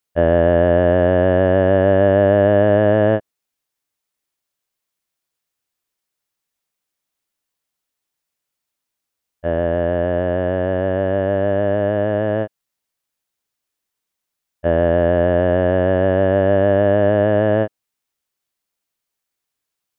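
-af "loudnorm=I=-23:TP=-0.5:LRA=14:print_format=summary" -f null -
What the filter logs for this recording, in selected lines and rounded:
Input Integrated:    -16.6 LUFS
Input True Peak:      -3.3 dBTP
Input LRA:             7.6 LU
Input Threshold:     -26.7 LUFS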